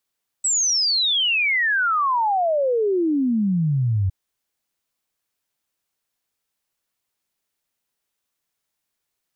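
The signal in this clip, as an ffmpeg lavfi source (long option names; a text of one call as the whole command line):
ffmpeg -f lavfi -i "aevalsrc='0.141*clip(min(t,3.66-t)/0.01,0,1)*sin(2*PI*8000*3.66/log(91/8000)*(exp(log(91/8000)*t/3.66)-1))':duration=3.66:sample_rate=44100" out.wav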